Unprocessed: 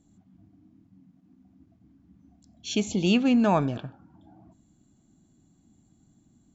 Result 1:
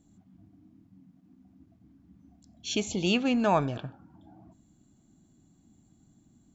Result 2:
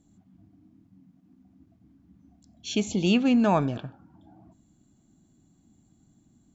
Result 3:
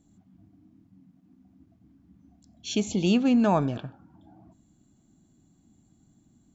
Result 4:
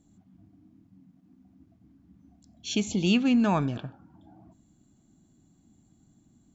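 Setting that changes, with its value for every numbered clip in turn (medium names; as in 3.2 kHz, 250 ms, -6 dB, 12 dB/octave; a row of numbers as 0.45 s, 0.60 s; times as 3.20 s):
dynamic bell, frequency: 220 Hz, 6.2 kHz, 2.4 kHz, 590 Hz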